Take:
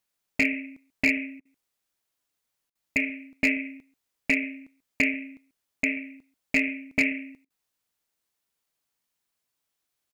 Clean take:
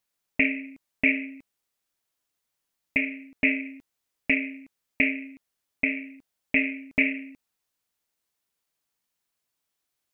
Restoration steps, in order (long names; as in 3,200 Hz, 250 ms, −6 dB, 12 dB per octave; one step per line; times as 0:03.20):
clipped peaks rebuilt −14 dBFS
repair the gap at 0:01.40/0:02.70/0:07.45, 51 ms
echo removal 138 ms −22 dB